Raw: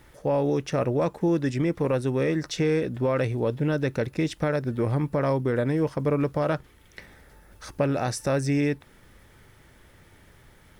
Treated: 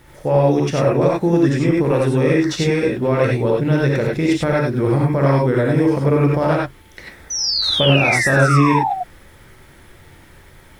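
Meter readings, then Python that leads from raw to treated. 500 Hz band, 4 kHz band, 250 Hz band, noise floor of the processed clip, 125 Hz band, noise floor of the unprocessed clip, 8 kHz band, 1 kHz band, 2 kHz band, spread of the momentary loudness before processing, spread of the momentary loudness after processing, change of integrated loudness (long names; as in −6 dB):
+8.5 dB, +19.5 dB, +9.0 dB, −46 dBFS, +10.0 dB, −55 dBFS, +12.5 dB, +12.0 dB, +14.0 dB, 3 LU, 6 LU, +9.5 dB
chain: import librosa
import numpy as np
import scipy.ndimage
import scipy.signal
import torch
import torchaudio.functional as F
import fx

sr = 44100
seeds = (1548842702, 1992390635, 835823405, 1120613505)

y = fx.spec_paint(x, sr, seeds[0], shape='fall', start_s=7.3, length_s=1.63, low_hz=710.0, high_hz=6100.0, level_db=-28.0)
y = fx.rev_gated(y, sr, seeds[1], gate_ms=120, shape='rising', drr_db=-3.0)
y = y * librosa.db_to_amplitude(4.5)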